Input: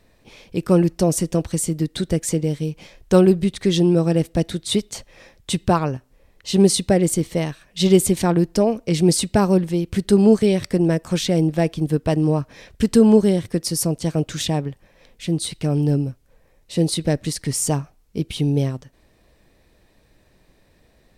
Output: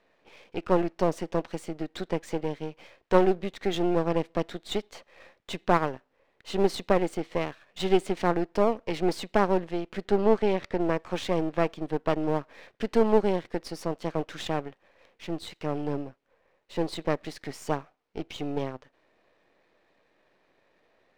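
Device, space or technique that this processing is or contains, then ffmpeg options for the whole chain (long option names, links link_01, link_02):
crystal radio: -filter_complex "[0:a]highpass=400,lowpass=2600,aeval=exprs='if(lt(val(0),0),0.251*val(0),val(0))':channel_layout=same,asettb=1/sr,asplit=3[link_01][link_02][link_03];[link_01]atrim=end=10.054[link_04];[link_02]atrim=start=10.05:end=10.81,asetpts=PTS-STARTPTS,afade=type=in:duration=0.004:curve=qsin,afade=type=out:start_time=0.756:duration=0.004:curve=qsin,highshelf=frequency=7500:gain=-8.5[link_05];[link_03]atrim=start=10.806[link_06];[link_04][link_05]acrossfade=duration=0.004:curve1=hsin:curve2=qsin[link_07];[link_07][link_06]acrossfade=duration=0.004:curve1=qsin:curve2=hsin"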